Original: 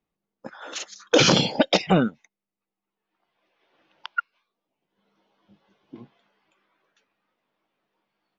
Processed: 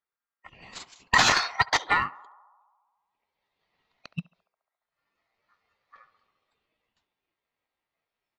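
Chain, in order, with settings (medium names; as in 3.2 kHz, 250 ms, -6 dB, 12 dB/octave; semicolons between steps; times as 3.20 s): peaking EQ 67 Hz -9 dB 2.7 oct; ring modulator 1.6 kHz; in parallel at -10 dB: hard clipper -18.5 dBFS, distortion -9 dB; on the sum: formant shift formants -2 st; on a send: band-passed feedback delay 69 ms, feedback 77%, band-pass 840 Hz, level -14 dB; on the sum: upward expansion 1.5:1, over -33 dBFS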